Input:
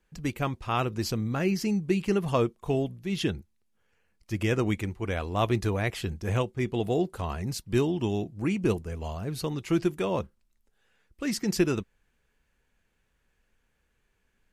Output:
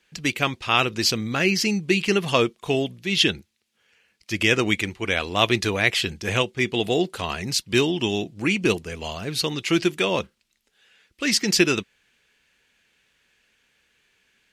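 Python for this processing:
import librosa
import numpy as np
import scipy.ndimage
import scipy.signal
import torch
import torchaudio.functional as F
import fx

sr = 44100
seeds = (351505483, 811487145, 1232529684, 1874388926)

y = fx.weighting(x, sr, curve='D')
y = y * librosa.db_to_amplitude(5.0)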